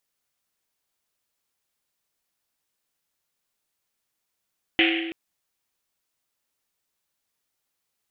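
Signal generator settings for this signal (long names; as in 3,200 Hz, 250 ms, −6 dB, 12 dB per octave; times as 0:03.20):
drum after Risset length 0.33 s, pitch 330 Hz, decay 1.76 s, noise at 2,500 Hz, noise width 1,400 Hz, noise 50%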